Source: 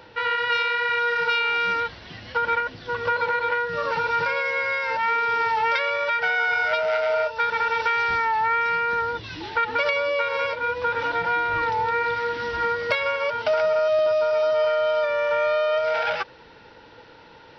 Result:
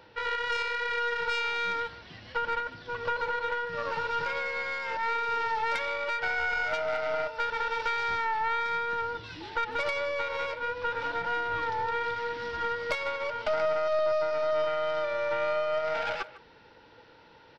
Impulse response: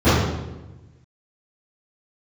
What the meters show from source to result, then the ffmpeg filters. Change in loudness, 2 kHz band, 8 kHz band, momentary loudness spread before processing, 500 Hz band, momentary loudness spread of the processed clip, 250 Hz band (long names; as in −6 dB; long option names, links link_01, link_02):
−7.0 dB, −7.5 dB, can't be measured, 5 LU, −7.0 dB, 5 LU, −5.5 dB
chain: -filter_complex "[0:a]aeval=exprs='0.398*(cos(1*acos(clip(val(0)/0.398,-1,1)))-cos(1*PI/2))+0.0631*(cos(4*acos(clip(val(0)/0.398,-1,1)))-cos(4*PI/2))':channel_layout=same,asplit=2[link_01][link_02];[link_02]adelay=150,highpass=300,lowpass=3400,asoftclip=type=hard:threshold=-16.5dB,volume=-16dB[link_03];[link_01][link_03]amix=inputs=2:normalize=0,volume=-7.5dB"